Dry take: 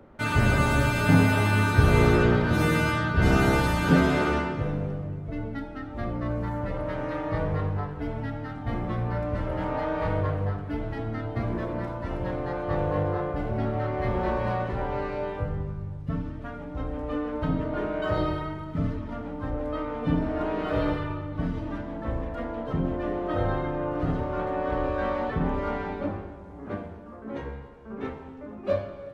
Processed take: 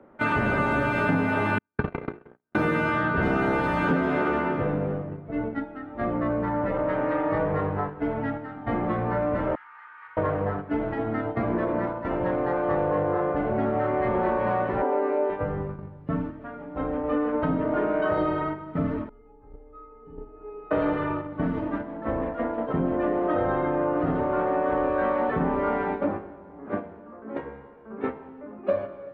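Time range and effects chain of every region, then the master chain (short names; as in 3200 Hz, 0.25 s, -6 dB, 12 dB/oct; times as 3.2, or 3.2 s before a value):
1.58–2.55 air absorption 150 m + doubler 14 ms -12.5 dB + gate -16 dBFS, range -60 dB
9.55–10.17 CVSD 64 kbps + inverse Chebyshev high-pass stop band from 650 Hz + tape spacing loss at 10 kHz 35 dB
14.82–15.3 Chebyshev band-pass 260–8000 Hz, order 4 + tilt -3.5 dB/oct + notches 50/100/150/200/250/300/350 Hz
19.09–20.71 tilt -4.5 dB/oct + resonator 420 Hz, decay 0.37 s, mix 100%
whole clip: gate -32 dBFS, range -7 dB; three-band isolator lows -14 dB, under 180 Hz, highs -21 dB, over 2500 Hz; compressor, threshold -28 dBFS; gain +7.5 dB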